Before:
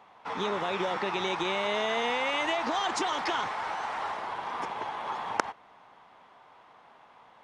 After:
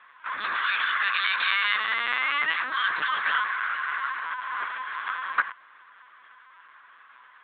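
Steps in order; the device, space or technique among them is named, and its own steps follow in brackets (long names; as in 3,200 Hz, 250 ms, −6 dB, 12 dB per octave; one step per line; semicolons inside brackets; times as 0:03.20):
brick-wall band-stop 330–960 Hz
low-pass filter 5,600 Hz 12 dB per octave
0:00.55–0:01.76: spectral tilt +3.5 dB per octave
talking toy (linear-prediction vocoder at 8 kHz pitch kept; high-pass filter 440 Hz 12 dB per octave; parametric band 1,600 Hz +12 dB 0.57 octaves)
level +2 dB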